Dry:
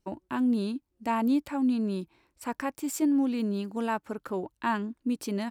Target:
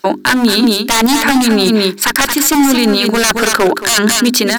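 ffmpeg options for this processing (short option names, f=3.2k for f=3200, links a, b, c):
-filter_complex "[0:a]equalizer=f=1.6k:t=o:w=0.67:g=12,equalizer=f=4k:t=o:w=0.67:g=9,equalizer=f=10k:t=o:w=0.67:g=-10,dynaudnorm=f=120:g=7:m=4dB,highpass=270,atempo=1.2,aeval=exprs='0.0794*(abs(mod(val(0)/0.0794+3,4)-2)-1)':c=same,equalizer=f=12k:w=0.44:g=14,aecho=1:1:224:0.316,areverse,acompressor=threshold=-36dB:ratio=10,areverse,bandreject=f=50:t=h:w=6,bandreject=f=100:t=h:w=6,bandreject=f=150:t=h:w=6,bandreject=f=200:t=h:w=6,bandreject=f=250:t=h:w=6,bandreject=f=300:t=h:w=6,bandreject=f=350:t=h:w=6,bandreject=f=400:t=h:w=6,asplit=2[a][b];[b]aeval=exprs='(mod(22.4*val(0)+1,2)-1)/22.4':c=same,volume=-9.5dB[c];[a][c]amix=inputs=2:normalize=0,alimiter=level_in=29dB:limit=-1dB:release=50:level=0:latency=1,volume=-1dB"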